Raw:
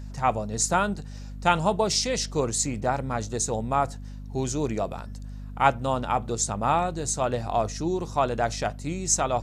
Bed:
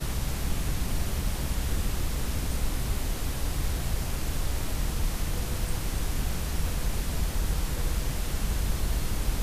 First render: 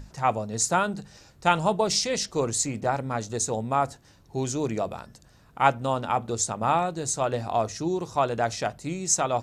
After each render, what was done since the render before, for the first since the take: notches 50/100/150/200/250 Hz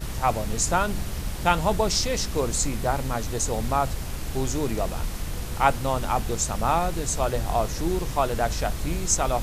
add bed -1.5 dB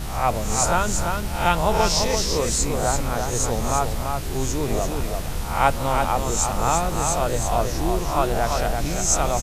spectral swells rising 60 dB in 0.52 s; echo 0.339 s -5 dB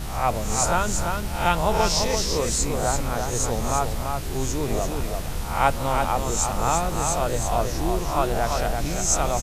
gain -1.5 dB

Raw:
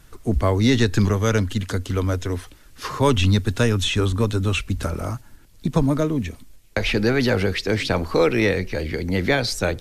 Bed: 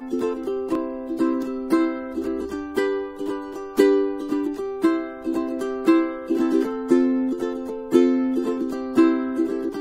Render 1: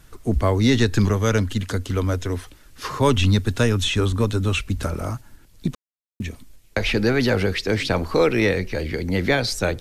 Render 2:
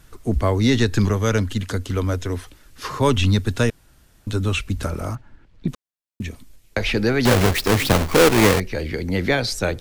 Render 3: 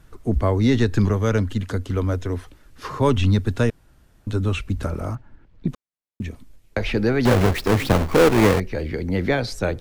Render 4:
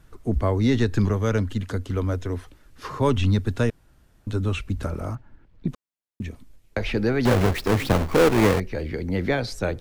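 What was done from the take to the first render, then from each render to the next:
5.75–6.2 mute
3.7–4.27 room tone; 5.15–5.68 LPF 2600 Hz; 7.25–8.6 half-waves squared off
high shelf 2200 Hz -9 dB
gain -2.5 dB

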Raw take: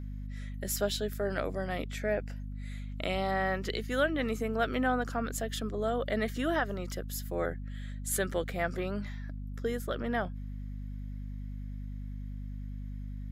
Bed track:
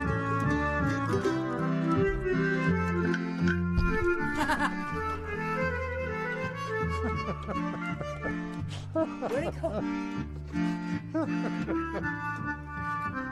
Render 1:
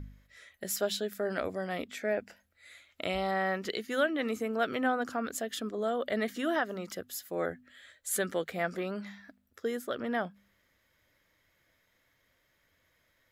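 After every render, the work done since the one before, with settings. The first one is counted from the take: de-hum 50 Hz, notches 5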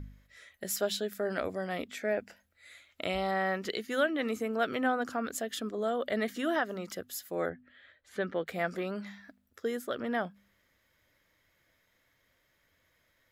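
7.49–8.47 air absorption 290 m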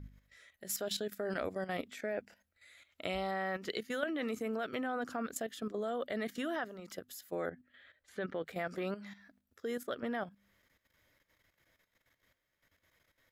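level quantiser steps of 12 dB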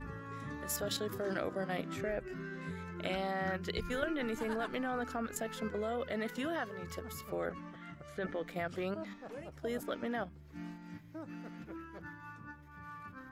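add bed track -16 dB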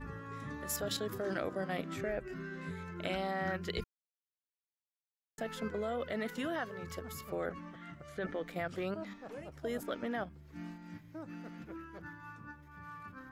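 3.84–5.38 mute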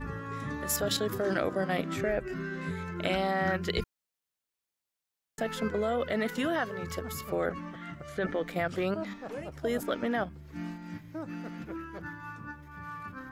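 gain +7 dB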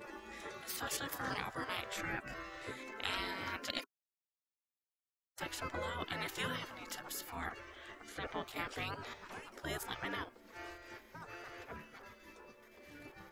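spectral gate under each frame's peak -15 dB weak; bell 390 Hz +4 dB 1.6 oct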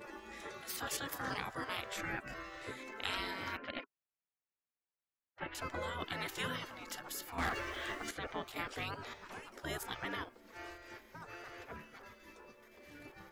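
3.57–5.55 LPF 2700 Hz 24 dB/oct; 7.38–8.11 sample leveller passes 3

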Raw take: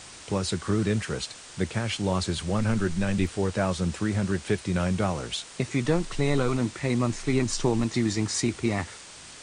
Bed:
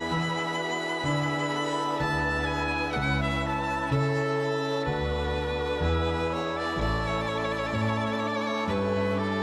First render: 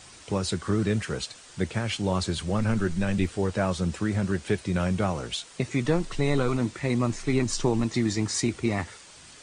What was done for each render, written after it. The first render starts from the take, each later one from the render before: denoiser 6 dB, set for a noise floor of -46 dBFS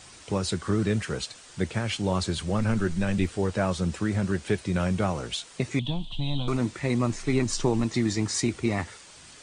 5.79–6.48 EQ curve 110 Hz 0 dB, 290 Hz -7 dB, 420 Hz -25 dB, 620 Hz -8 dB, 950 Hz -5 dB, 1300 Hz -25 dB, 2000 Hz -23 dB, 3300 Hz +13 dB, 5300 Hz -19 dB, 12000 Hz -14 dB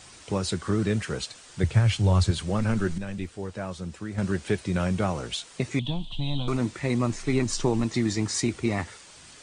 1.63–2.31 resonant low shelf 160 Hz +9.5 dB, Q 1.5; 2.98–4.18 gain -8 dB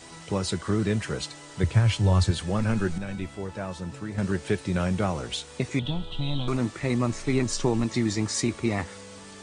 add bed -19 dB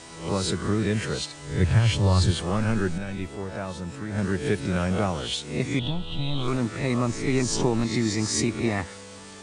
spectral swells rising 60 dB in 0.49 s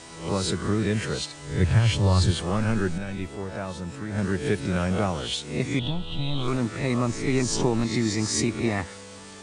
nothing audible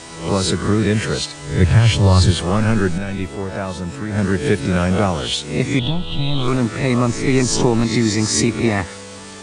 gain +8 dB; limiter -3 dBFS, peak gain reduction 1 dB

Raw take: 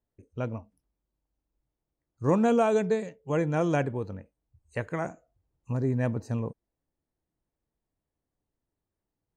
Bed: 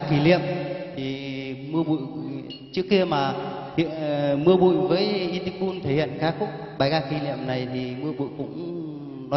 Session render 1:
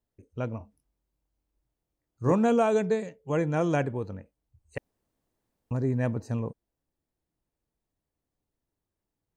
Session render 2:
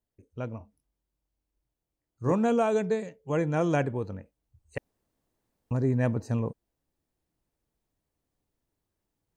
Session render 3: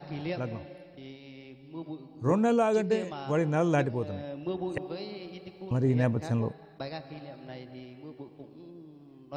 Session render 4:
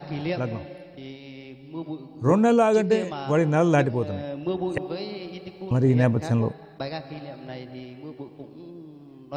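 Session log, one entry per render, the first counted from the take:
0.58–2.32 doubler 24 ms -5 dB; 4.78–5.71 room tone
vocal rider within 3 dB 2 s
add bed -16.5 dB
gain +6 dB

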